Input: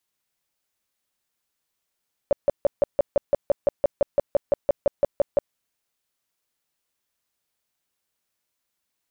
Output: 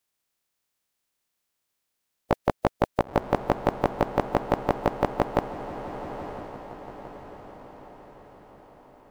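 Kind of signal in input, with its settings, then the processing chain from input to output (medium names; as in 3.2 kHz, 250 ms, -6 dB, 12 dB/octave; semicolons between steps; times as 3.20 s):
tone bursts 569 Hz, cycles 10, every 0.17 s, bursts 19, -13.5 dBFS
spectral peaks clipped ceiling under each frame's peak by 26 dB; on a send: echo that smears into a reverb 968 ms, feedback 51%, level -9.5 dB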